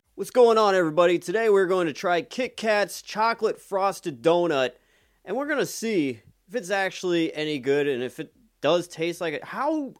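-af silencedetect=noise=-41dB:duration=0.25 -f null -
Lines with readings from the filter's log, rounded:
silence_start: 4.71
silence_end: 5.27 | silence_duration: 0.55
silence_start: 6.18
silence_end: 6.52 | silence_duration: 0.33
silence_start: 8.26
silence_end: 8.63 | silence_duration: 0.37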